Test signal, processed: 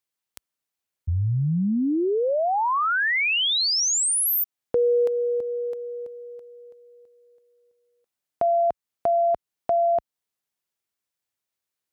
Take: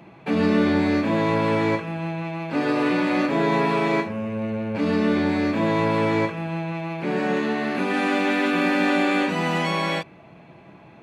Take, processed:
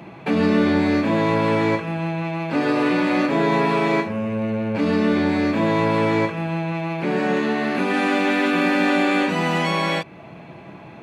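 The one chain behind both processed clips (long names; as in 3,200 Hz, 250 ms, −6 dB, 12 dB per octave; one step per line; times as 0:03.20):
high-pass filter 50 Hz
in parallel at +2 dB: downward compressor, threshold −33 dBFS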